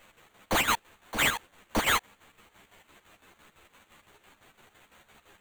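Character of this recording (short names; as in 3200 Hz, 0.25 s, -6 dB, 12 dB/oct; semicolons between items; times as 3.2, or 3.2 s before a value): a quantiser's noise floor 10-bit, dither triangular; chopped level 5.9 Hz, depth 65%, duty 60%; aliases and images of a low sample rate 5200 Hz, jitter 0%; a shimmering, thickened sound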